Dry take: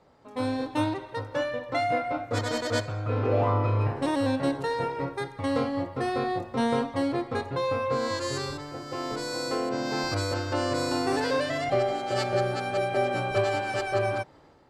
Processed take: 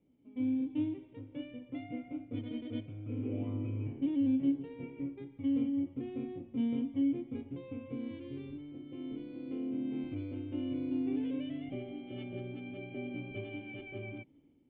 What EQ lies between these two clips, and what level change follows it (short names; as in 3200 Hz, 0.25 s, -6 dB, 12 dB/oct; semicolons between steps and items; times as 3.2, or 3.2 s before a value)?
vocal tract filter i; air absorption 80 m; 0.0 dB